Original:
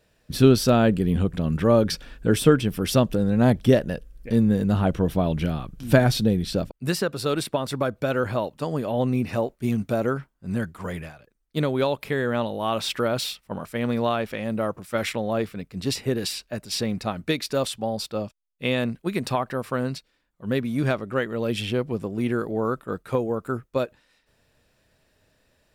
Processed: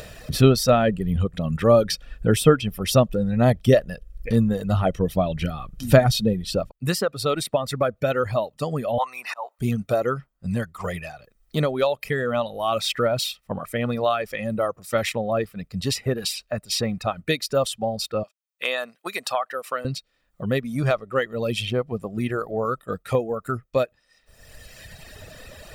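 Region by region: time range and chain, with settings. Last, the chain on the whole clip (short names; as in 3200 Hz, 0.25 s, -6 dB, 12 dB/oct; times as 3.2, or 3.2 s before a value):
8.98–9.59 resonant high-pass 940 Hz, resonance Q 6.3 + auto swell 0.341 s
18.23–19.85 HPF 640 Hz + hard clip -14 dBFS
whole clip: reverb removal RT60 1.6 s; comb 1.6 ms, depth 39%; upward compressor, threshold -25 dBFS; gain +2 dB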